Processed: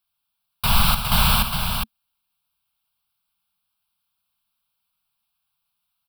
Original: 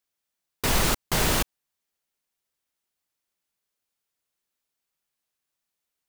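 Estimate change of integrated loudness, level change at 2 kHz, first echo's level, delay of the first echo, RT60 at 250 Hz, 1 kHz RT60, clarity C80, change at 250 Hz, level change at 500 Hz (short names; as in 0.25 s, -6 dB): +4.5 dB, +3.0 dB, -12.0 dB, 57 ms, none, none, none, +2.5 dB, -6.0 dB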